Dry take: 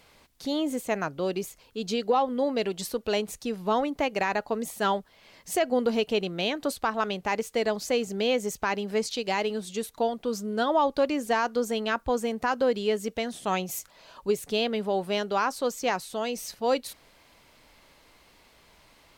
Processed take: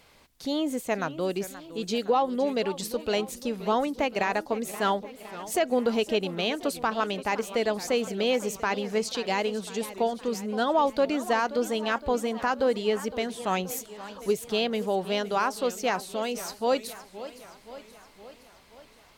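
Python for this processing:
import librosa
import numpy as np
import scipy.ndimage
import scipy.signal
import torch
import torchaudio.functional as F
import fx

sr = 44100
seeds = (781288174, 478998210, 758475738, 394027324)

y = fx.echo_warbled(x, sr, ms=520, feedback_pct=60, rate_hz=2.8, cents=211, wet_db=-15)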